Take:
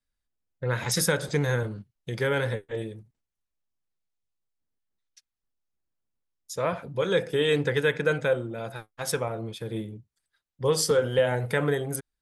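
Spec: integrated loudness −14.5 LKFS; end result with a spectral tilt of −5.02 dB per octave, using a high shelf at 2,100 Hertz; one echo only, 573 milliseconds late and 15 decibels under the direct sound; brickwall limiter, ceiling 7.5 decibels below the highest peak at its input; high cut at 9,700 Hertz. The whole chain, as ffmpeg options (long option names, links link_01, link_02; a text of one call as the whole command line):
ffmpeg -i in.wav -af "lowpass=9700,highshelf=frequency=2100:gain=-3.5,alimiter=limit=-18.5dB:level=0:latency=1,aecho=1:1:573:0.178,volume=16dB" out.wav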